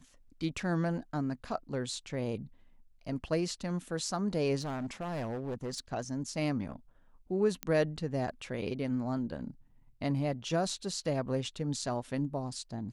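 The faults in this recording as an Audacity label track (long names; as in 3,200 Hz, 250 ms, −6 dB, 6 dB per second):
4.610000	5.800000	clipping −32.5 dBFS
7.630000	7.630000	click −17 dBFS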